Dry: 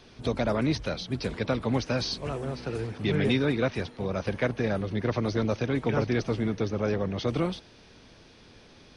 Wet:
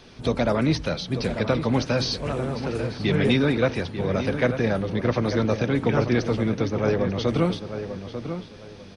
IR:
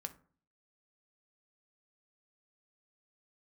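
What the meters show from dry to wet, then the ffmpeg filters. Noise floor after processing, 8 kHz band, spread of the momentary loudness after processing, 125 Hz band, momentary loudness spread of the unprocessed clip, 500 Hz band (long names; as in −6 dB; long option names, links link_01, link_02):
−43 dBFS, +4.5 dB, 11 LU, +5.0 dB, 6 LU, +5.0 dB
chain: -filter_complex "[0:a]asplit=2[link_01][link_02];[link_02]adelay=893,lowpass=frequency=2200:poles=1,volume=-9dB,asplit=2[link_03][link_04];[link_04]adelay=893,lowpass=frequency=2200:poles=1,volume=0.26,asplit=2[link_05][link_06];[link_06]adelay=893,lowpass=frequency=2200:poles=1,volume=0.26[link_07];[link_01][link_03][link_05][link_07]amix=inputs=4:normalize=0,asplit=2[link_08][link_09];[1:a]atrim=start_sample=2205[link_10];[link_09][link_10]afir=irnorm=-1:irlink=0,volume=0dB[link_11];[link_08][link_11]amix=inputs=2:normalize=0"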